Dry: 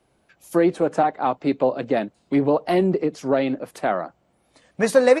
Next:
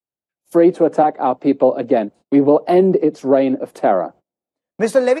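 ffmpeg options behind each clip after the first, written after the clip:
-filter_complex "[0:a]agate=range=-33dB:threshold=-45dB:ratio=16:detection=peak,highpass=49,acrossover=split=210|800|3200[a][b][c][d];[b]dynaudnorm=f=170:g=5:m=16.5dB[e];[a][e][c][d]amix=inputs=4:normalize=0,volume=-1.5dB"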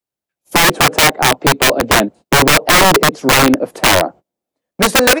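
-af "aeval=exprs='(mod(3.35*val(0)+1,2)-1)/3.35':c=same,volume=6.5dB"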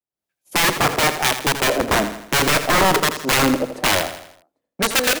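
-filter_complex "[0:a]dynaudnorm=f=130:g=3:m=11.5dB,acrossover=split=1600[a][b];[a]aeval=exprs='val(0)*(1-0.5/2+0.5/2*cos(2*PI*1.1*n/s))':c=same[c];[b]aeval=exprs='val(0)*(1-0.5/2-0.5/2*cos(2*PI*1.1*n/s))':c=same[d];[c][d]amix=inputs=2:normalize=0,asplit=2[e][f];[f]aecho=0:1:82|164|246|328|410:0.299|0.143|0.0688|0.033|0.0158[g];[e][g]amix=inputs=2:normalize=0,volume=-8dB"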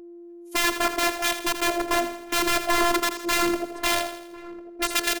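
-filter_complex "[0:a]asplit=2[a][b];[b]adelay=1050,volume=-18dB,highshelf=f=4k:g=-23.6[c];[a][c]amix=inputs=2:normalize=0,aeval=exprs='val(0)+0.0178*sin(2*PI*410*n/s)':c=same,afftfilt=real='hypot(re,im)*cos(PI*b)':imag='0':win_size=512:overlap=0.75,volume=-2.5dB"

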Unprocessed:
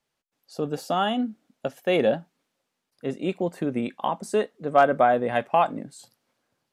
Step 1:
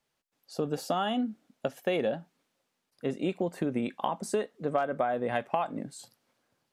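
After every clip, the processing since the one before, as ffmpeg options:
-af "acompressor=threshold=-25dB:ratio=8"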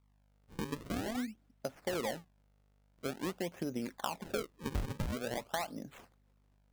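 -af "aeval=exprs='val(0)+0.000891*(sin(2*PI*50*n/s)+sin(2*PI*2*50*n/s)/2+sin(2*PI*3*50*n/s)/3+sin(2*PI*4*50*n/s)/4+sin(2*PI*5*50*n/s)/5)':c=same,acrusher=samples=37:mix=1:aa=0.000001:lfo=1:lforange=59.2:lforate=0.47,volume=-7.5dB"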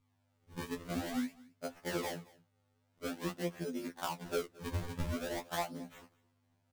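-af "acrusher=samples=3:mix=1:aa=0.000001,aecho=1:1:221:0.0708,afftfilt=real='re*2*eq(mod(b,4),0)':imag='im*2*eq(mod(b,4),0)':win_size=2048:overlap=0.75,volume=2dB"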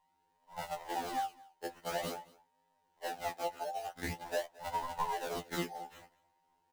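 -filter_complex "[0:a]afftfilt=real='real(if(between(b,1,1008),(2*floor((b-1)/48)+1)*48-b,b),0)':imag='imag(if(between(b,1,1008),(2*floor((b-1)/48)+1)*48-b,b),0)*if(between(b,1,1008),-1,1)':win_size=2048:overlap=0.75,acrossover=split=700|960[a][b][c];[c]volume=33dB,asoftclip=hard,volume=-33dB[d];[a][b][d]amix=inputs=3:normalize=0"

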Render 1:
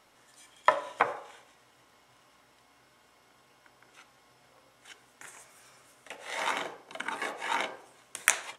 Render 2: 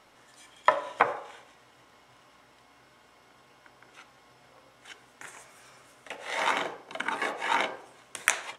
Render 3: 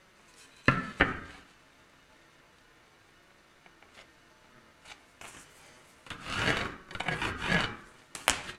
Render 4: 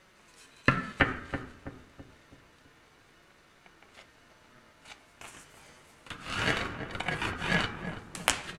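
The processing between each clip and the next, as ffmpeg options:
-filter_complex "[0:a]highshelf=f=6.6k:g=-7.5,asplit=2[a][b];[b]alimiter=limit=-11.5dB:level=0:latency=1:release=341,volume=0dB[c];[a][c]amix=inputs=2:normalize=0,volume=-1.5dB"
-af "flanger=delay=5.3:depth=3.7:regen=59:speed=0.29:shape=sinusoidal,aeval=exprs='val(0)*sin(2*PI*750*n/s)':c=same,volume=5.5dB"
-filter_complex "[0:a]asplit=2[a][b];[b]adelay=328,lowpass=f=840:p=1,volume=-7dB,asplit=2[c][d];[d]adelay=328,lowpass=f=840:p=1,volume=0.5,asplit=2[e][f];[f]adelay=328,lowpass=f=840:p=1,volume=0.5,asplit=2[g][h];[h]adelay=328,lowpass=f=840:p=1,volume=0.5,asplit=2[i][j];[j]adelay=328,lowpass=f=840:p=1,volume=0.5,asplit=2[k][l];[l]adelay=328,lowpass=f=840:p=1,volume=0.5[m];[a][c][e][g][i][k][m]amix=inputs=7:normalize=0"

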